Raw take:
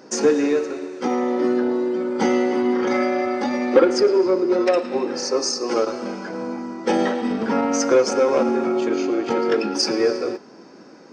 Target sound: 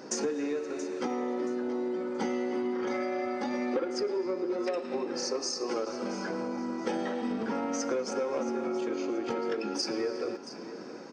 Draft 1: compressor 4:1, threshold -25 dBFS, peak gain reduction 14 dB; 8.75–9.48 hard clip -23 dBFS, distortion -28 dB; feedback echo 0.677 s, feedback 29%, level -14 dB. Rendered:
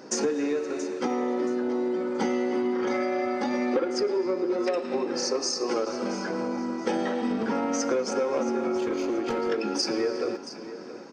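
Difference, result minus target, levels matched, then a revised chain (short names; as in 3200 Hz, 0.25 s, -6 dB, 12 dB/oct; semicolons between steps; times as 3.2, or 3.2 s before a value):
compressor: peak gain reduction -5 dB
compressor 4:1, threshold -31.5 dBFS, peak gain reduction 18.5 dB; 8.75–9.48 hard clip -23 dBFS, distortion -46 dB; feedback echo 0.677 s, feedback 29%, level -14 dB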